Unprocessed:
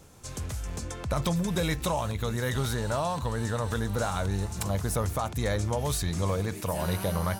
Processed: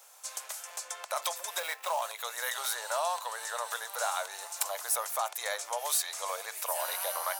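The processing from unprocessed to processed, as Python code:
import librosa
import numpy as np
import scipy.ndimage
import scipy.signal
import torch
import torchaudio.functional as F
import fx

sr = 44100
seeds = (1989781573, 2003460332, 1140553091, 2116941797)

y = fx.median_filter(x, sr, points=9, at=(1.59, 2.02))
y = scipy.signal.sosfilt(scipy.signal.butter(6, 620.0, 'highpass', fs=sr, output='sos'), y)
y = fx.high_shelf(y, sr, hz=9300.0, db=10.5)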